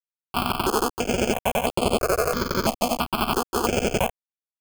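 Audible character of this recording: aliases and images of a low sample rate 1.9 kHz, jitter 0%; chopped level 11 Hz, depth 65%, duty 70%; a quantiser's noise floor 6-bit, dither none; notches that jump at a steady rate 3 Hz 410–5900 Hz

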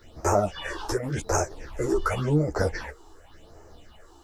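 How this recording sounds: phasing stages 6, 0.9 Hz, lowest notch 140–3500 Hz; a quantiser's noise floor 12-bit, dither none; a shimmering, thickened sound

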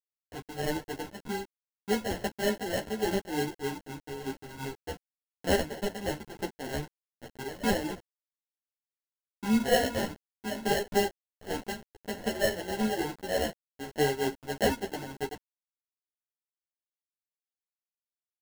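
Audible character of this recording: aliases and images of a low sample rate 1.2 kHz, jitter 0%; tremolo triangle 3.3 Hz, depth 75%; a quantiser's noise floor 8-bit, dither none; a shimmering, thickened sound

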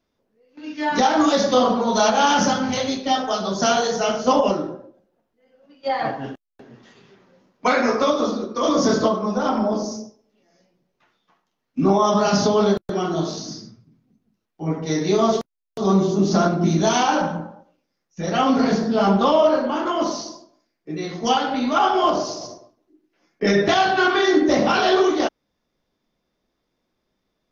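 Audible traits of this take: noise floor -76 dBFS; spectral tilt -4.5 dB/octave

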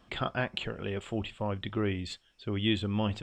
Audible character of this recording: noise floor -65 dBFS; spectral tilt -4.5 dB/octave

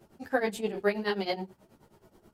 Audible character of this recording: tremolo triangle 9.4 Hz, depth 95%; a shimmering, thickened sound

